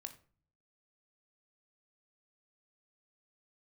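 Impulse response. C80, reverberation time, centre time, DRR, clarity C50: 17.0 dB, 0.45 s, 8 ms, 6.0 dB, 13.0 dB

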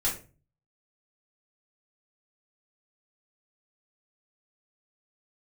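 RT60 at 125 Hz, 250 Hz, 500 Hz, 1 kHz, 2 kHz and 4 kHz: 0.70 s, 0.45 s, 0.40 s, 0.30 s, 0.30 s, 0.25 s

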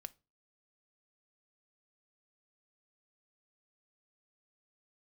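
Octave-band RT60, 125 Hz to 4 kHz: 0.40 s, 0.40 s, 0.35 s, 0.30 s, 0.25 s, 0.25 s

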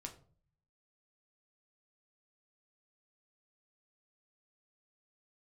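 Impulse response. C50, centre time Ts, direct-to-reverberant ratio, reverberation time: 12.5 dB, 12 ms, 2.5 dB, 0.45 s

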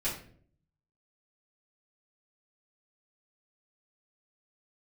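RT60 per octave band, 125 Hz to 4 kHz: 0.95 s, 0.75 s, 0.65 s, 0.45 s, 0.45 s, 0.35 s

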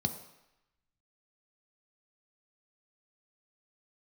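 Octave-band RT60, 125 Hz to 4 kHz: 0.70 s, 0.75 s, 0.85 s, 0.95 s, 1.0 s, 0.90 s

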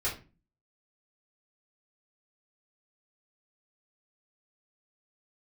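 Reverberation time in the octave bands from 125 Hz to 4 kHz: 0.60 s, 0.55 s, 0.35 s, 0.30 s, 0.30 s, 0.25 s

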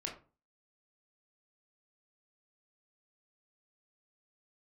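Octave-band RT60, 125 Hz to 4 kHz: 0.45 s, 0.40 s, 0.35 s, 0.35 s, 0.25 s, 0.20 s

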